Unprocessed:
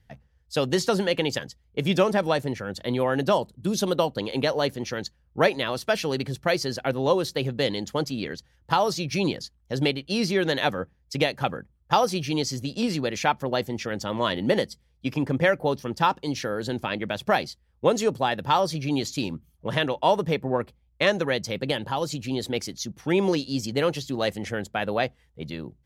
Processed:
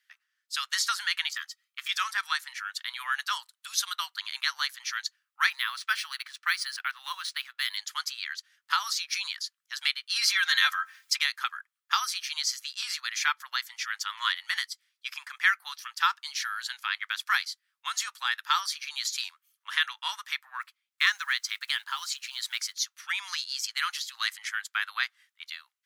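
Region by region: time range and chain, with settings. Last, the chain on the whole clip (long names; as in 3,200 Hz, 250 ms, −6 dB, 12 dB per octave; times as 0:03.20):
0:01.33–0:01.89: comb filter 1.6 ms, depth 47% + de-essing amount 100%
0:05.50–0:07.77: high-shelf EQ 7,900 Hz −8.5 dB + linearly interpolated sample-rate reduction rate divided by 3×
0:10.16–0:11.19: comb filter 3.8 ms, depth 60% + envelope flattener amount 50%
0:20.61–0:22.75: one scale factor per block 7 bits + high-shelf EQ 8,800 Hz −3 dB
whole clip: automatic gain control gain up to 4 dB; dynamic equaliser 2,700 Hz, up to −6 dB, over −43 dBFS, Q 4.4; Butterworth high-pass 1,200 Hz 48 dB per octave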